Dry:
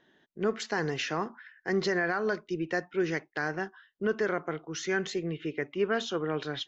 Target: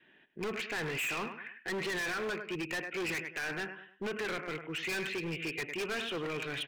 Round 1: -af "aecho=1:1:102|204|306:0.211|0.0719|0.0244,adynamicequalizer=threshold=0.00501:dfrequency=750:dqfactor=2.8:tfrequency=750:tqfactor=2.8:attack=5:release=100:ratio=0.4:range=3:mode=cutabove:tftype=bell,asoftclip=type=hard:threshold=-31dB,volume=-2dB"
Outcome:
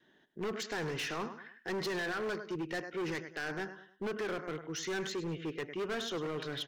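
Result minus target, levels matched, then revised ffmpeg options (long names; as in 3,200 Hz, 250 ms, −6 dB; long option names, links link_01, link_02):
2,000 Hz band −3.0 dB
-af "aecho=1:1:102|204|306:0.211|0.0719|0.0244,adynamicequalizer=threshold=0.00501:dfrequency=750:dqfactor=2.8:tfrequency=750:tqfactor=2.8:attack=5:release=100:ratio=0.4:range=3:mode=cutabove:tftype=bell,lowpass=frequency=2500:width_type=q:width=10,asoftclip=type=hard:threshold=-31dB,volume=-2dB"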